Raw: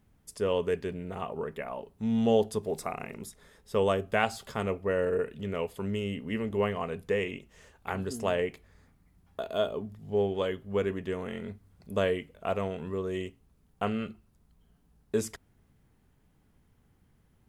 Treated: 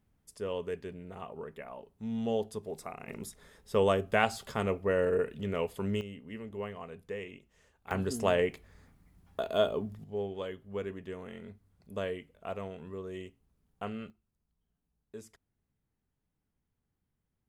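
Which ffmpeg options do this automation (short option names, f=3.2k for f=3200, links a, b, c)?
-af "asetnsamples=n=441:p=0,asendcmd='3.08 volume volume 0dB;6.01 volume volume -10.5dB;7.91 volume volume 1.5dB;10.04 volume volume -8dB;14.1 volume volume -17.5dB',volume=-7.5dB"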